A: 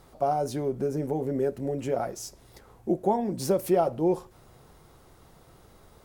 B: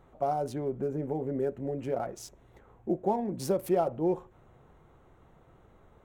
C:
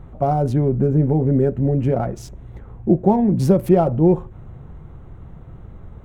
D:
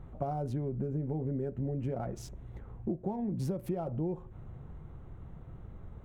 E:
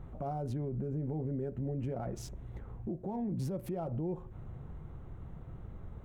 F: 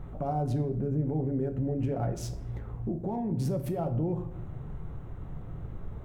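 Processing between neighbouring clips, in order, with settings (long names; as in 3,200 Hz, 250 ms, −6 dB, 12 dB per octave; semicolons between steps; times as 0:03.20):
adaptive Wiener filter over 9 samples; level −3.5 dB
bass and treble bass +15 dB, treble −6 dB; level +8.5 dB
downward compressor 10 to 1, threshold −22 dBFS, peak gain reduction 14 dB; level −8.5 dB
brickwall limiter −30 dBFS, peak gain reduction 8.5 dB; level +1 dB
convolution reverb RT60 0.75 s, pre-delay 7 ms, DRR 7.5 dB; level +5 dB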